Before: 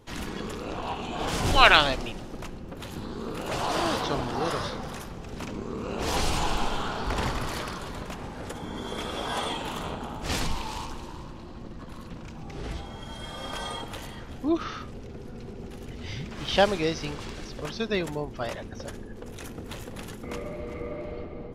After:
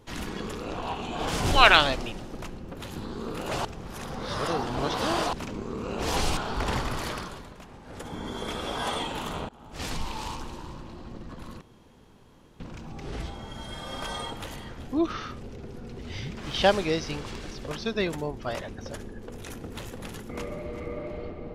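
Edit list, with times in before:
3.65–5.33 reverse
6.37–6.87 cut
7.67–8.64 dip -9.5 dB, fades 0.32 s
9.99–10.72 fade in, from -22.5 dB
12.11 insert room tone 0.99 s
15.5–15.93 cut

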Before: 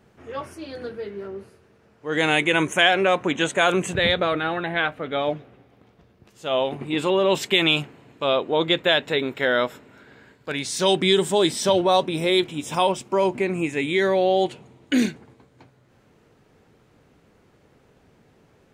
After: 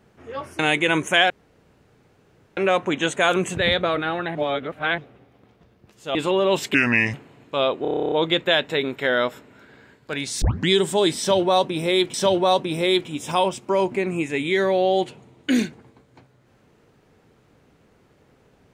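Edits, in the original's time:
0.59–2.24 cut
2.95 insert room tone 1.27 s
4.73–5.36 reverse
6.53–6.94 cut
7.53–7.82 speed 73%
8.5 stutter 0.03 s, 11 plays
10.8 tape start 0.27 s
11.57–12.52 loop, 2 plays

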